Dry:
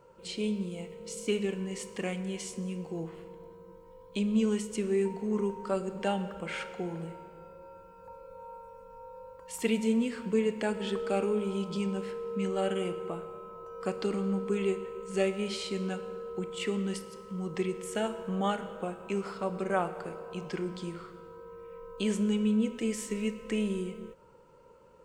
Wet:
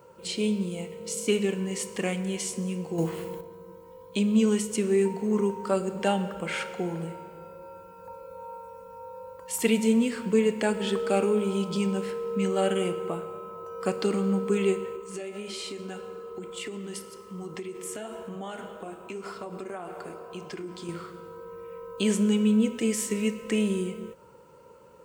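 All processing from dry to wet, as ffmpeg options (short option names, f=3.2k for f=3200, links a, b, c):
-filter_complex "[0:a]asettb=1/sr,asplit=3[a][b][c];[a]atrim=end=2.984[d];[b]atrim=start=2.98:end=3.41,asetpts=PTS-STARTPTS,afade=t=in:d=0.004:c=qsin,afade=t=out:st=0.426:d=0.004:c=qsin,highshelf=f=5.1k:g=8,acontrast=50[e];[c]atrim=start=3.406[f];[d][e]acrossfade=d=0.004:c1=hsin:c2=qsin[g];[g][f]acrossfade=d=0.004:c1=qsin:c2=hsin,asettb=1/sr,asplit=3[h][i][j];[h]atrim=end=14.964[k];[i]atrim=start=14.96:end=20.89,asetpts=PTS-STARTPTS,afade=t=in:d=0.004:c=qsin,afade=t=out:st=5.926:d=0.004:c=qsin,aecho=1:1:2.9:0.34,atrim=end_sample=261513,acompressor=threshold=-33dB:ratio=12:attack=3.2:release=140:knee=1:detection=peak,flanger=delay=1.3:depth=7.5:regen=-69:speed=1.8:shape=triangular[l];[j]atrim=start=20.886[m];[k][l]acrossfade=d=0.004:c1=hsin:c2=qsin[n];[n][m]acrossfade=d=0.004:c1=qsin:c2=hsin,highpass=68,highshelf=f=9.9k:g=11,volume=5dB"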